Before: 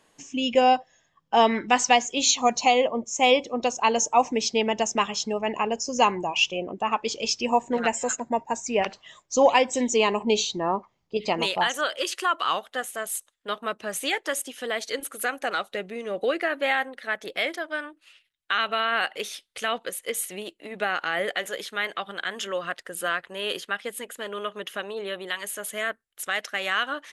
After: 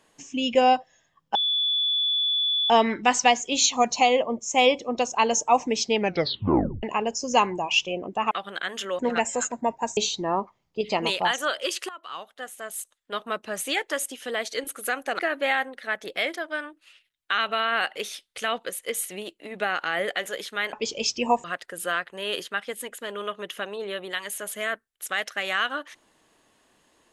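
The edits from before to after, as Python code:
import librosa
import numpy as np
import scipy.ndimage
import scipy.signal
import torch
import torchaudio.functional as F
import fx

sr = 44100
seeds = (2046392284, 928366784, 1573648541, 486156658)

y = fx.edit(x, sr, fx.insert_tone(at_s=1.35, length_s=1.35, hz=3450.0, db=-21.0),
    fx.tape_stop(start_s=4.62, length_s=0.86),
    fx.swap(start_s=6.96, length_s=0.71, other_s=21.93, other_length_s=0.68),
    fx.cut(start_s=8.65, length_s=1.68),
    fx.fade_in_from(start_s=12.25, length_s=1.43, floor_db=-20.0),
    fx.cut(start_s=15.55, length_s=0.84), tone=tone)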